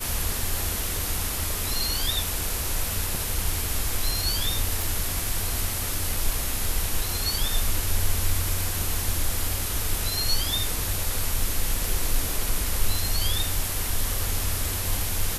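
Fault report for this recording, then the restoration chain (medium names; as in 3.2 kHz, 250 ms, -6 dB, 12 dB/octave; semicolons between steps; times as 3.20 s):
4.82 s: pop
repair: de-click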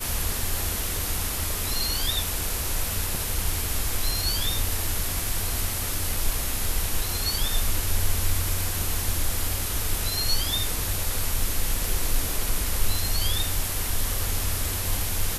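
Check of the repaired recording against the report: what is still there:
nothing left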